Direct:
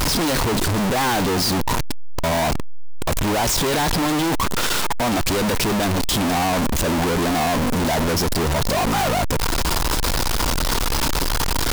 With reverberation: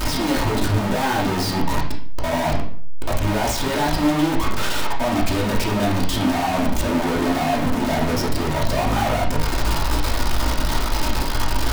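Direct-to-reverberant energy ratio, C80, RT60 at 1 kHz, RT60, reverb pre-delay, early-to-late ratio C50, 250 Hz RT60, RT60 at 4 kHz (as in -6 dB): -4.0 dB, 10.5 dB, 0.50 s, 0.55 s, 3 ms, 6.0 dB, 0.60 s, 0.45 s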